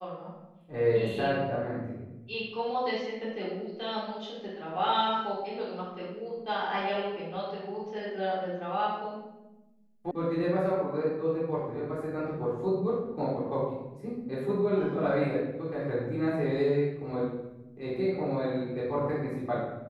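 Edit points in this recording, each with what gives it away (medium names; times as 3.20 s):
10.11 s: sound stops dead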